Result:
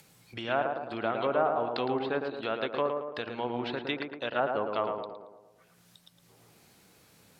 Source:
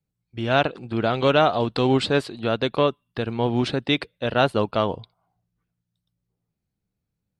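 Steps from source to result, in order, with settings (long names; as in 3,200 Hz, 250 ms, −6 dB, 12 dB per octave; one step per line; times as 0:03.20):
treble cut that deepens with the level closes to 1,200 Hz, closed at −15.5 dBFS
high-pass filter 840 Hz 6 dB per octave
treble cut that deepens with the level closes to 1,900 Hz, closed at −20.5 dBFS
upward compression, threshold −29 dBFS
on a send: tape delay 111 ms, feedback 60%, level −3 dB, low-pass 1,400 Hz
on the sum: level −4 dB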